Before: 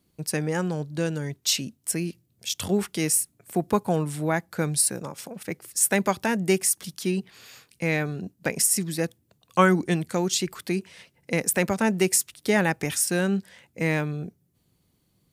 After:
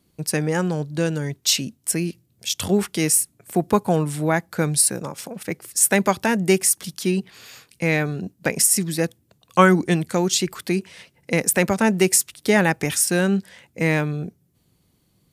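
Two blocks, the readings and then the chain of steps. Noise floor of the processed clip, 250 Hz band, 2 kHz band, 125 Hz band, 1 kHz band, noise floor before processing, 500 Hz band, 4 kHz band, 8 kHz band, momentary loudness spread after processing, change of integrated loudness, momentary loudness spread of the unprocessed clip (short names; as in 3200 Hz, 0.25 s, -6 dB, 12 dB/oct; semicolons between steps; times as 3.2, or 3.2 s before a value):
-65 dBFS, +4.5 dB, +4.5 dB, +4.5 dB, +4.5 dB, -69 dBFS, +4.5 dB, +4.5 dB, +4.5 dB, 10 LU, +4.5 dB, 10 LU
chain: downsampling 32000 Hz; gain +4.5 dB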